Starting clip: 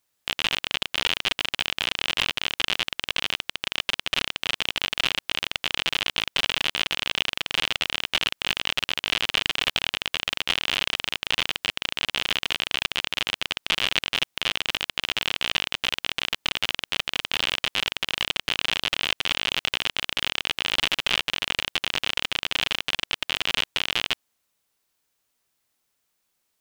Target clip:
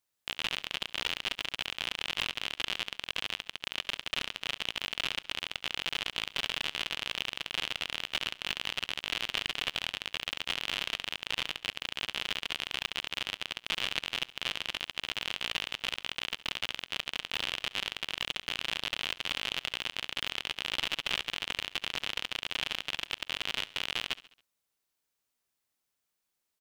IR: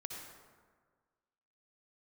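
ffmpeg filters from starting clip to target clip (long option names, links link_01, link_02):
-af "aecho=1:1:69|138|207|276:0.112|0.0606|0.0327|0.0177,volume=-8.5dB"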